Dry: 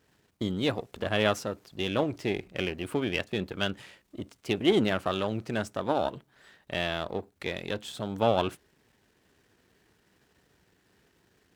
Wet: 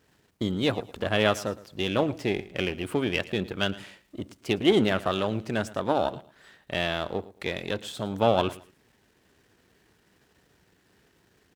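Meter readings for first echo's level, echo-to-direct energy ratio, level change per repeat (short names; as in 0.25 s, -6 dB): -18.5 dB, -18.0 dB, -12.0 dB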